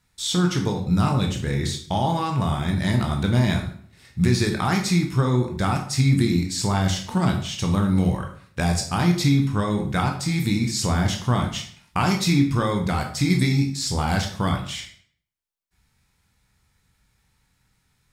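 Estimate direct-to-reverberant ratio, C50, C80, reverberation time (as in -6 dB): 2.0 dB, 8.0 dB, 11.0 dB, 0.55 s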